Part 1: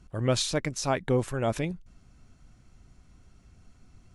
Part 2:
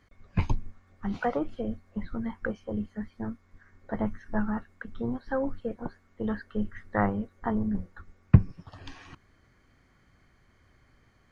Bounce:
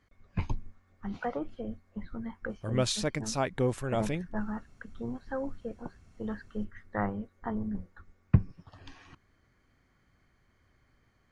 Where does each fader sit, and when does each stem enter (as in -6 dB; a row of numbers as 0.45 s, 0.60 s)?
-3.0 dB, -5.5 dB; 2.50 s, 0.00 s